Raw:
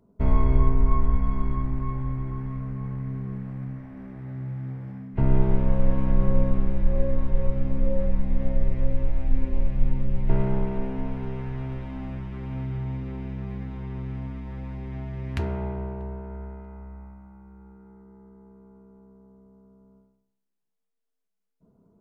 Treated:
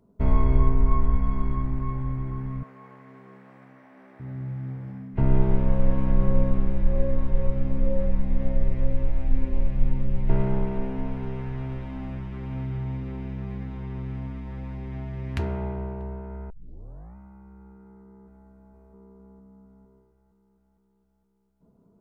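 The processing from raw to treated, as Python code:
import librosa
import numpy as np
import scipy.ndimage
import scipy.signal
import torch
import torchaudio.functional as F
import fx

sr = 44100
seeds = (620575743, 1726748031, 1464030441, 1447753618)

y = fx.highpass(x, sr, hz=500.0, slope=12, at=(2.63, 4.2))
y = fx.echo_throw(y, sr, start_s=17.81, length_s=0.66, ms=460, feedback_pct=70, wet_db=-3.5)
y = fx.edit(y, sr, fx.tape_start(start_s=16.5, length_s=0.66), tone=tone)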